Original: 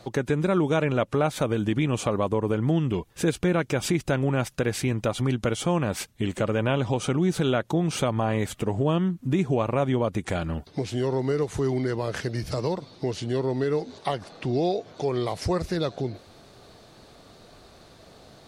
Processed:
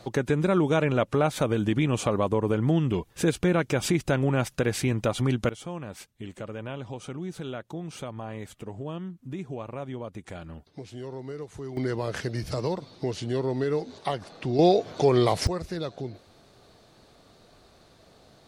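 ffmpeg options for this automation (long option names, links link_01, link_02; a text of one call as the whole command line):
ffmpeg -i in.wav -af "asetnsamples=nb_out_samples=441:pad=0,asendcmd='5.49 volume volume -12dB;11.77 volume volume -1.5dB;14.59 volume volume 6dB;15.47 volume volume -5.5dB',volume=0dB" out.wav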